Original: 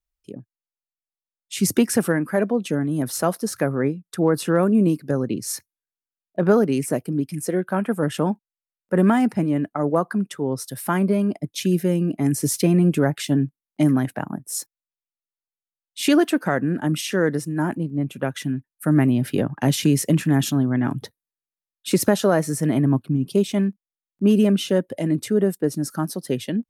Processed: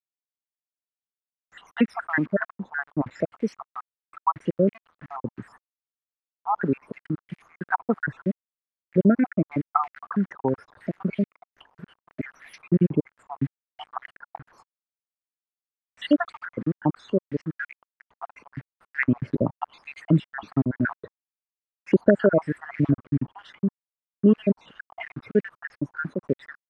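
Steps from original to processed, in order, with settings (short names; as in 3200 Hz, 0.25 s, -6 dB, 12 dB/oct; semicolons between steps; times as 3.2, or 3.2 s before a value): random spectral dropouts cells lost 74%; requantised 8-bit, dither none; stepped low-pass 6.2 Hz 940–2200 Hz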